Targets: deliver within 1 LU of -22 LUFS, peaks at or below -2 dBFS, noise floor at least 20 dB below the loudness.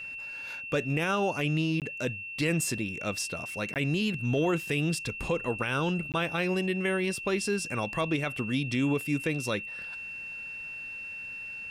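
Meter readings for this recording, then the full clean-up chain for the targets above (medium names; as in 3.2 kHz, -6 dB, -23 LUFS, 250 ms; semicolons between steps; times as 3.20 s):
dropouts 3; longest dropout 18 ms; steady tone 2.7 kHz; tone level -37 dBFS; loudness -30.0 LUFS; peak level -17.5 dBFS; loudness target -22.0 LUFS
-> interpolate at 1.80/3.74/6.12 s, 18 ms; band-stop 2.7 kHz, Q 30; trim +8 dB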